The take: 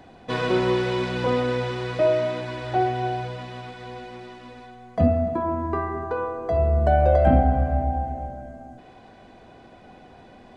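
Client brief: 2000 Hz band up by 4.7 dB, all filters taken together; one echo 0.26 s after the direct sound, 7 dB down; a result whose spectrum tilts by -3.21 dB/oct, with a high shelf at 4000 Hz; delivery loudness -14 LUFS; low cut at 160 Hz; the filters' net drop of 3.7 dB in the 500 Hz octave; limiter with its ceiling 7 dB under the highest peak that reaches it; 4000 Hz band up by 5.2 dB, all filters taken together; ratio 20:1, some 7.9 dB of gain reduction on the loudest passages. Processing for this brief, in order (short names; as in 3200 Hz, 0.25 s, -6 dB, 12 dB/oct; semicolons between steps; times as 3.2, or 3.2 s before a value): HPF 160 Hz; bell 500 Hz -5.5 dB; bell 2000 Hz +6.5 dB; high shelf 4000 Hz -5 dB; bell 4000 Hz +7 dB; compressor 20:1, threshold -25 dBFS; limiter -23 dBFS; echo 0.26 s -7 dB; gain +18 dB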